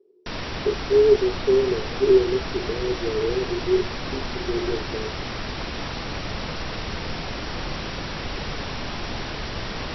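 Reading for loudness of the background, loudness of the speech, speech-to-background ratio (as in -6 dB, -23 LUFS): -30.5 LUFS, -23.0 LUFS, 7.5 dB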